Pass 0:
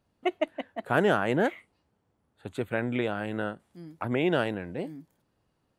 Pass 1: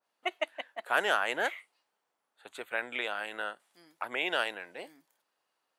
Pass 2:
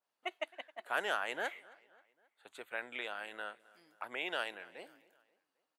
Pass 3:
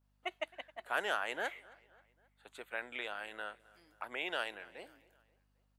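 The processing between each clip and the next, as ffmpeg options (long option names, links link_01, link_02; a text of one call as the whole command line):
ffmpeg -i in.wav -af "highpass=800,adynamicequalizer=threshold=0.00891:dfrequency=2000:dqfactor=0.7:tfrequency=2000:tqfactor=0.7:attack=5:release=100:ratio=0.375:range=2.5:mode=boostabove:tftype=highshelf" out.wav
ffmpeg -i in.wav -filter_complex "[0:a]asplit=2[link_01][link_02];[link_02]adelay=266,lowpass=frequency=4400:poles=1,volume=-22dB,asplit=2[link_03][link_04];[link_04]adelay=266,lowpass=frequency=4400:poles=1,volume=0.5,asplit=2[link_05][link_06];[link_06]adelay=266,lowpass=frequency=4400:poles=1,volume=0.5[link_07];[link_01][link_03][link_05][link_07]amix=inputs=4:normalize=0,volume=-7dB" out.wav
ffmpeg -i in.wav -af "aeval=exprs='val(0)+0.0002*(sin(2*PI*50*n/s)+sin(2*PI*2*50*n/s)/2+sin(2*PI*3*50*n/s)/3+sin(2*PI*4*50*n/s)/4+sin(2*PI*5*50*n/s)/5)':channel_layout=same" out.wav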